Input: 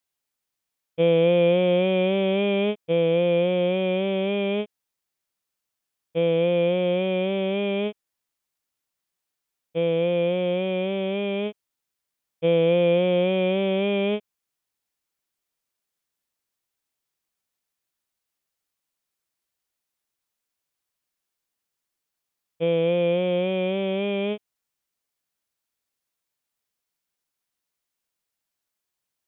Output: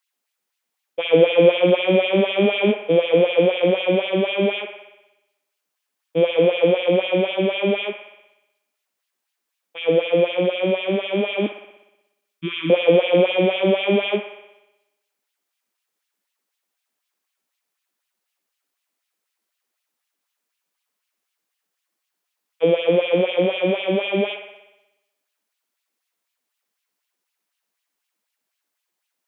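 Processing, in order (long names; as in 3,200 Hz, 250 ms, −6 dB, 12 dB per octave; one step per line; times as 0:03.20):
0:11.46–0:12.70: elliptic band-stop filter 320–1,100 Hz, stop band 40 dB
auto-filter high-pass sine 4 Hz 200–2,900 Hz
delay with a band-pass on its return 61 ms, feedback 64%, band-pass 1,300 Hz, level −6 dB
level +3 dB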